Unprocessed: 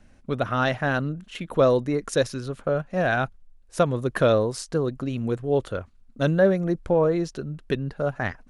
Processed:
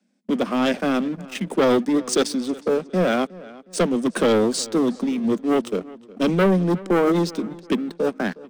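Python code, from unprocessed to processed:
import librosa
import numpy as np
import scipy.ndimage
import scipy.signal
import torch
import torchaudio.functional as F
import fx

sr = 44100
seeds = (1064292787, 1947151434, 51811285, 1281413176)

y = scipy.signal.sosfilt(scipy.signal.butter(16, 180.0, 'highpass', fs=sr, output='sos'), x)
y = fx.peak_eq(y, sr, hz=1300.0, db=-11.5, octaves=2.0)
y = fx.leveller(y, sr, passes=3)
y = fx.formant_shift(y, sr, semitones=-2)
y = fx.echo_filtered(y, sr, ms=363, feedback_pct=40, hz=4500.0, wet_db=-20)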